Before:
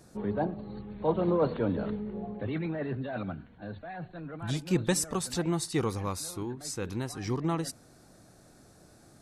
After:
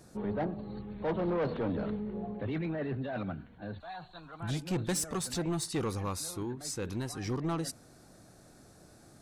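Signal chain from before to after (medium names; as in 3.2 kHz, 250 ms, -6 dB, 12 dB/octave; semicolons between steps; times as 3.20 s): 3.80–4.40 s: ten-band graphic EQ 125 Hz -10 dB, 250 Hz -10 dB, 500 Hz -10 dB, 1 kHz +9 dB, 2 kHz -10 dB, 4 kHz +11 dB, 8 kHz +10 dB; saturation -26.5 dBFS, distortion -11 dB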